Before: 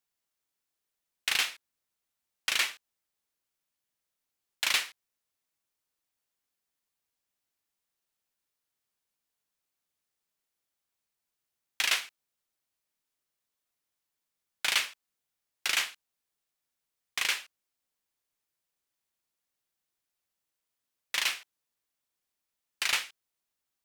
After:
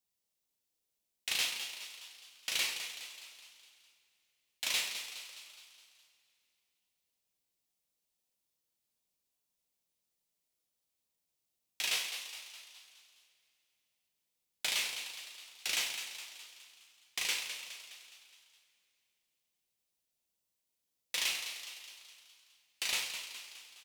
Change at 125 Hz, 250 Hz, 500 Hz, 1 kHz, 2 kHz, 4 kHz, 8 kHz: no reading, -3.0 dB, -3.0 dB, -8.0 dB, -6.5 dB, -3.0 dB, -1.5 dB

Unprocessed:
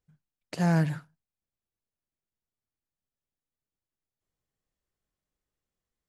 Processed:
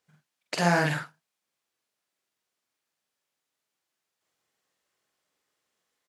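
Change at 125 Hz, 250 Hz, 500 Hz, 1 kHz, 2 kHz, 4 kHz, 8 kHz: -3.5 dB, -2.5 dB, +6.0 dB, +8.0 dB, +10.0 dB, +11.0 dB, +9.0 dB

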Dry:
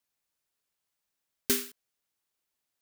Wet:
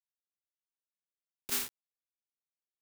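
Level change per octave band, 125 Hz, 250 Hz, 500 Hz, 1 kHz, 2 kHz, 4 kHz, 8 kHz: -10.0 dB, -13.5 dB, -14.0 dB, +1.0 dB, -3.5 dB, -4.0 dB, -4.0 dB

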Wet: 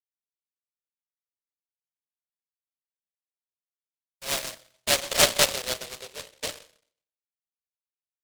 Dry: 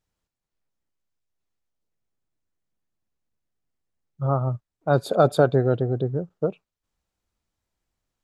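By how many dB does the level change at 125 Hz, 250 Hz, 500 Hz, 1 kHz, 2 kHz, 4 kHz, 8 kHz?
-21.0 dB, -14.5 dB, -9.5 dB, -6.0 dB, +7.5 dB, +17.0 dB, no reading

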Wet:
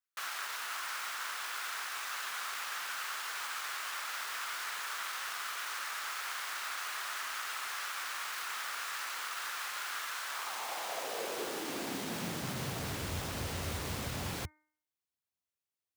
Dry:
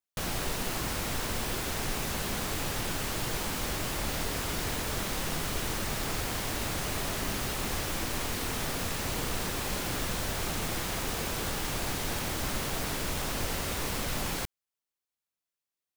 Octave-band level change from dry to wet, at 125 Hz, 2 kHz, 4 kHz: -9.0 dB, -1.5 dB, -5.0 dB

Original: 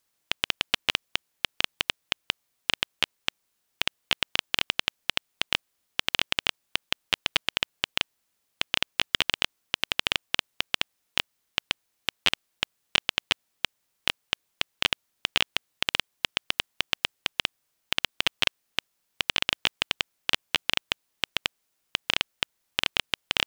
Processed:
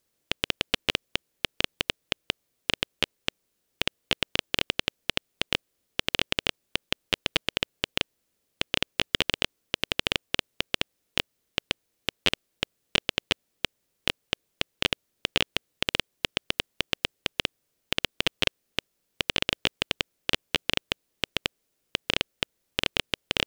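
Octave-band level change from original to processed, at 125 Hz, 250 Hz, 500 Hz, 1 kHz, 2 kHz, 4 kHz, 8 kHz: +5.5 dB, +6.5 dB, +5.5 dB, -2.0 dB, -1.5 dB, -1.0 dB, -1.0 dB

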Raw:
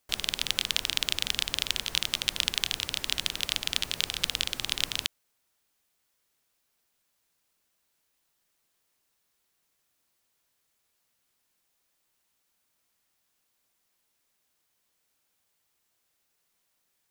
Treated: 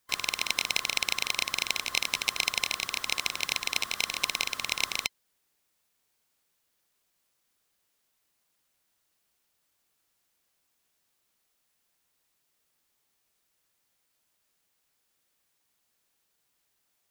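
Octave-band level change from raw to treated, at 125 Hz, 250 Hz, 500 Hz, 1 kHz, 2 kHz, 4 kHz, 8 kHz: -6.5 dB, -2.5 dB, +2.0 dB, +6.0 dB, +4.5 dB, -2.5 dB, +1.0 dB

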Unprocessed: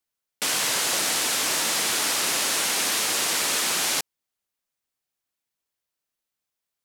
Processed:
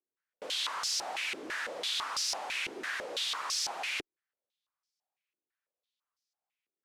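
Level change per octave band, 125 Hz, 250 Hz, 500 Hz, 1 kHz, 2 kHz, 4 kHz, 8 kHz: under -15 dB, -13.5 dB, -9.5 dB, -8.5 dB, -9.0 dB, -9.0 dB, -16.0 dB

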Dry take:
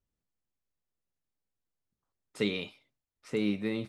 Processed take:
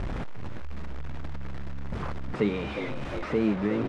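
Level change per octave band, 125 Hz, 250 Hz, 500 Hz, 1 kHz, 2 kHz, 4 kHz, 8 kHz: +10.5 dB, +5.5 dB, +6.0 dB, +18.5 dB, +4.0 dB, -3.0 dB, no reading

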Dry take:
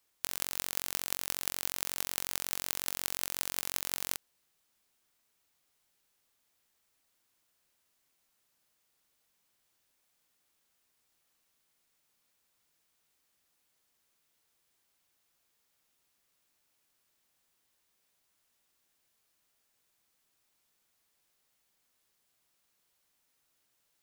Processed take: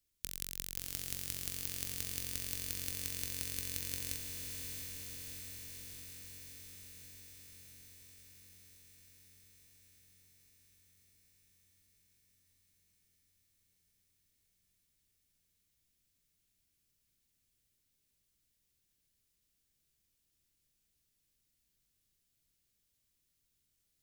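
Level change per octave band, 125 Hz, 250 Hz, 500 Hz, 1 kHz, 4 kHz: +7.0 dB, 0.0 dB, -6.5 dB, -15.5 dB, -5.0 dB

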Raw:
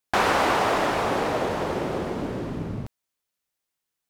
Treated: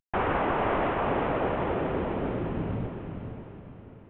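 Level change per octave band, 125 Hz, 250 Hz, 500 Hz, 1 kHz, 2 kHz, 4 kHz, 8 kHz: +1.0 dB, -1.0 dB, -2.5 dB, -4.5 dB, -6.5 dB, -12.5 dB, under -40 dB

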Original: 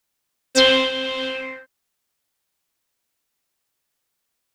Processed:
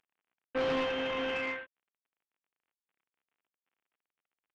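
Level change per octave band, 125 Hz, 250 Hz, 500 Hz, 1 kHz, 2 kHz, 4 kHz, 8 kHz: no reading, -10.5 dB, -11.5 dB, -8.5 dB, -12.0 dB, -21.0 dB, under -25 dB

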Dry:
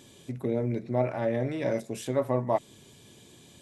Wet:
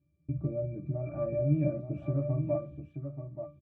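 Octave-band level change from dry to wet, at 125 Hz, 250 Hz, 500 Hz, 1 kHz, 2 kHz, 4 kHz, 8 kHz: +3.0 dB, -2.5 dB, -5.0 dB, -16.0 dB, under -10 dB, under -25 dB, under -30 dB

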